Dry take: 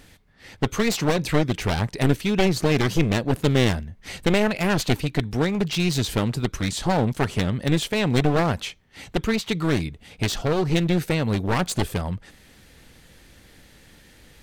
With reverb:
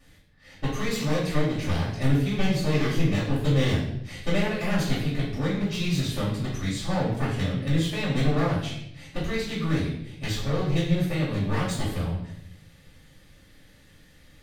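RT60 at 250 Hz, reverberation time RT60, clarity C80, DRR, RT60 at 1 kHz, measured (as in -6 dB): 1.1 s, 0.75 s, 6.5 dB, -9.5 dB, 0.65 s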